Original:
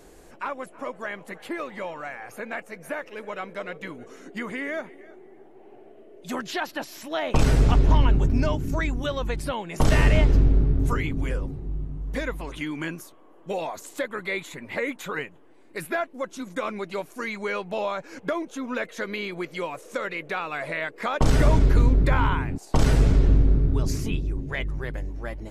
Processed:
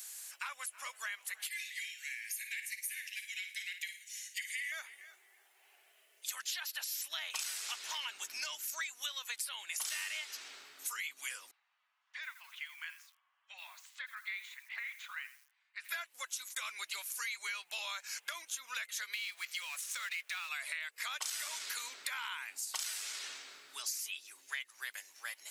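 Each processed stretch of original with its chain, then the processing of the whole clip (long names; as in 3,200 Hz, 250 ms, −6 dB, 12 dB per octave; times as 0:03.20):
0:01.47–0:04.72: Butterworth high-pass 1,800 Hz 72 dB per octave + flutter between parallel walls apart 9.4 metres, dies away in 0.37 s
0:11.51–0:15.89: Bessel high-pass filter 1,200 Hz, order 6 + head-to-tape spacing loss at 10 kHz 40 dB + feedback echo at a low word length 84 ms, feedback 35%, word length 10 bits, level −14.5 dB
0:19.13–0:20.49: mu-law and A-law mismatch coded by mu + high-pass filter 1,100 Hz 6 dB per octave + high-shelf EQ 7,200 Hz −10 dB
whole clip: high-pass filter 1,500 Hz 12 dB per octave; first difference; downward compressor 6 to 1, threshold −50 dBFS; level +13 dB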